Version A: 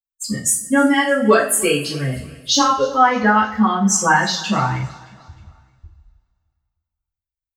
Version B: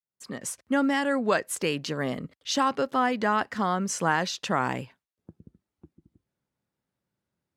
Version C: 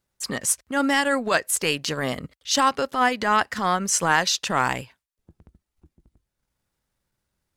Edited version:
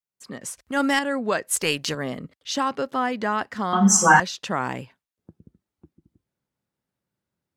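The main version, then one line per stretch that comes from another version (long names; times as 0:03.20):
B
0:00.57–0:00.99: punch in from C
0:01.51–0:01.95: punch in from C
0:03.73–0:04.20: punch in from A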